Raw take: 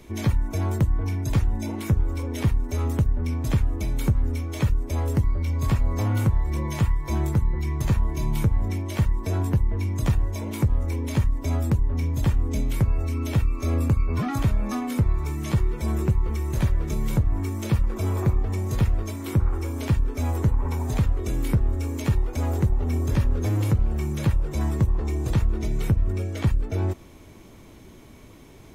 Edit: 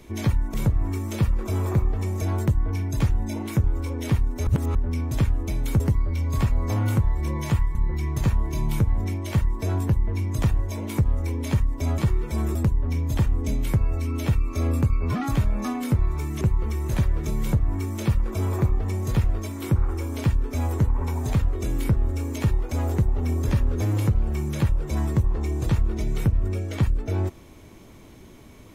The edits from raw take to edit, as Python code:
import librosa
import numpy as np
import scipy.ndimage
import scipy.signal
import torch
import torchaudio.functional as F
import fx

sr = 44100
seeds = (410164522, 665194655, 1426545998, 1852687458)

y = fx.edit(x, sr, fx.reverse_span(start_s=2.8, length_s=0.28),
    fx.cut(start_s=4.13, length_s=0.96),
    fx.cut(start_s=7.04, length_s=0.35),
    fx.move(start_s=15.48, length_s=0.57, to_s=11.62),
    fx.duplicate(start_s=17.05, length_s=1.67, to_s=0.54), tone=tone)